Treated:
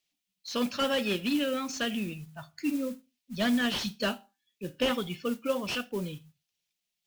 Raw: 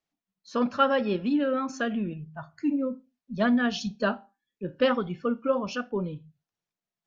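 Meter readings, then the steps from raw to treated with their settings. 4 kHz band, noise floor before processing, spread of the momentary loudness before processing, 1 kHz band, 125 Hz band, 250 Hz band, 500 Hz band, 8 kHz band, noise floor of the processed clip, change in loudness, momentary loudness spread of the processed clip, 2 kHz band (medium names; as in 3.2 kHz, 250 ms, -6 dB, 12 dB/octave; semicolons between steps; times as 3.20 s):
+5.0 dB, under -85 dBFS, 15 LU, -7.0 dB, -3.5 dB, -3.5 dB, -4.5 dB, no reading, -85 dBFS, -3.0 dB, 15 LU, -1.5 dB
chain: resonant high shelf 1.9 kHz +12 dB, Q 1.5; modulation noise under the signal 19 dB; slew-rate limiter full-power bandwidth 140 Hz; trim -3.5 dB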